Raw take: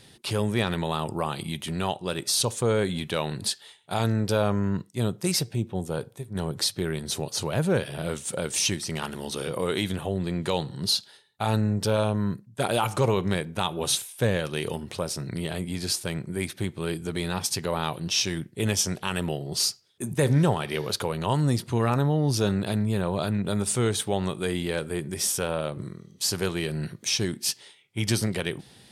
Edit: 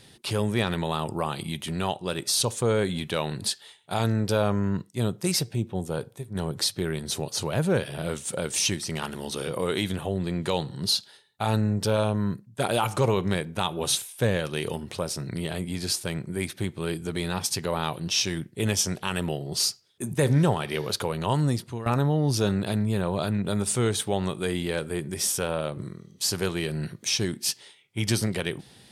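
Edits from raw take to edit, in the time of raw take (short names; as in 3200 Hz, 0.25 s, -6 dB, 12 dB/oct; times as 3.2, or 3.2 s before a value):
21.43–21.86 fade out, to -14.5 dB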